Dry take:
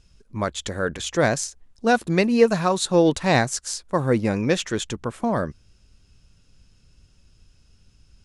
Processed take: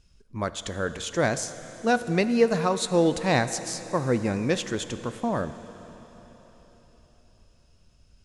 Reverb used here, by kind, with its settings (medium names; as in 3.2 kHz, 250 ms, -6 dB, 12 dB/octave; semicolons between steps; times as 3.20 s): plate-style reverb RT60 4.3 s, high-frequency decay 0.95×, DRR 11.5 dB; trim -4 dB